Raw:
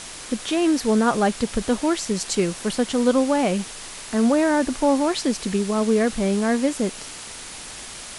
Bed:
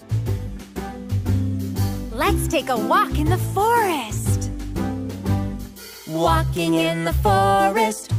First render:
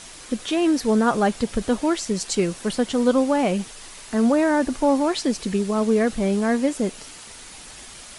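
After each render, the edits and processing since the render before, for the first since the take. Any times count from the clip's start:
broadband denoise 6 dB, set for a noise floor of −37 dBFS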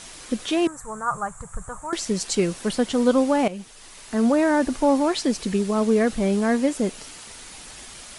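0:00.67–0:01.93: drawn EQ curve 160 Hz 0 dB, 230 Hz −25 dB, 330 Hz −22 dB, 690 Hz −10 dB, 1,200 Hz +2 dB, 3,000 Hz −27 dB, 5,000 Hz −27 dB, 7,500 Hz +3 dB, 12,000 Hz −12 dB
0:03.48–0:04.64: fade in equal-power, from −13.5 dB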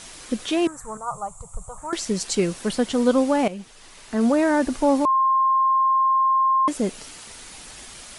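0:00.97–0:01.78: phaser with its sweep stopped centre 690 Hz, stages 4
0:03.54–0:04.21: high-shelf EQ 7,400 Hz −7 dB
0:05.05–0:06.68: beep over 1,060 Hz −15.5 dBFS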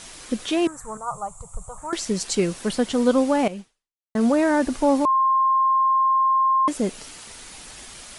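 0:03.59–0:04.15: fade out exponential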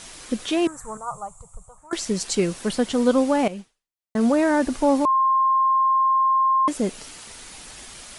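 0:00.88–0:01.91: fade out, to −17 dB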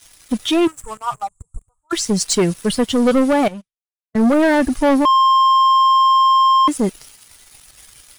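spectral dynamics exaggerated over time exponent 1.5
leveller curve on the samples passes 3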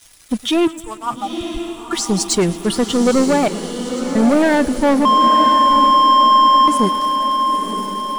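feedback delay with all-pass diffusion 956 ms, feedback 55%, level −7.5 dB
feedback echo with a swinging delay time 111 ms, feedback 72%, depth 80 cents, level −21 dB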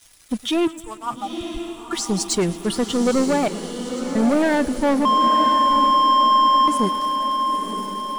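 level −4.5 dB

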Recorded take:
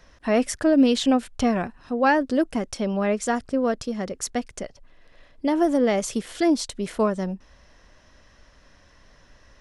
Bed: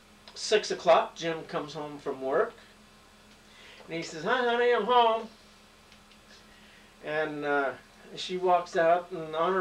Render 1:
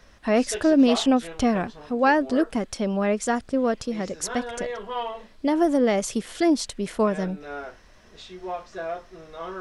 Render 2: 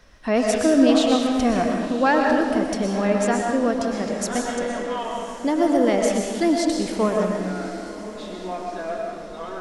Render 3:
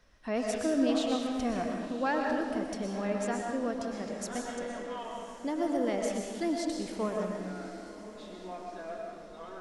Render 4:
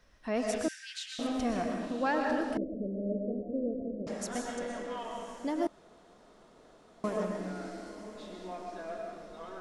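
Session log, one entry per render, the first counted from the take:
mix in bed −8 dB
feedback delay with all-pass diffusion 1,049 ms, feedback 51%, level −14 dB; comb and all-pass reverb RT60 1.2 s, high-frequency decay 0.9×, pre-delay 80 ms, DRR 1 dB
level −11.5 dB
0:00.68–0:01.19: Chebyshev high-pass with heavy ripple 1,500 Hz, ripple 3 dB; 0:02.57–0:04.07: Butterworth low-pass 600 Hz 72 dB per octave; 0:05.67–0:07.04: fill with room tone

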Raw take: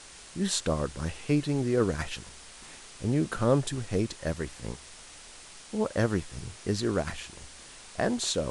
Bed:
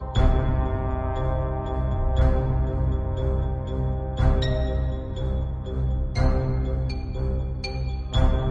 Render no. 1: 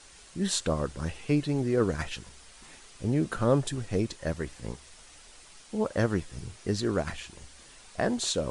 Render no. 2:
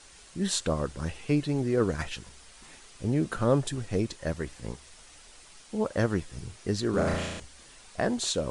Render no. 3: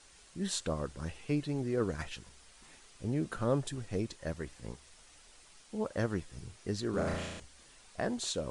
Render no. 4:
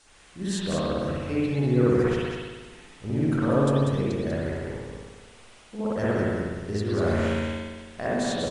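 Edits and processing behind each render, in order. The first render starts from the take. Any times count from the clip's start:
broadband denoise 6 dB, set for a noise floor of −49 dBFS
0:06.90–0:07.40: flutter between parallel walls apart 6 metres, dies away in 1.1 s
level −6.5 dB
on a send: single-tap delay 193 ms −4.5 dB; on the sum: spring reverb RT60 1.4 s, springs 57 ms, chirp 70 ms, DRR −8 dB

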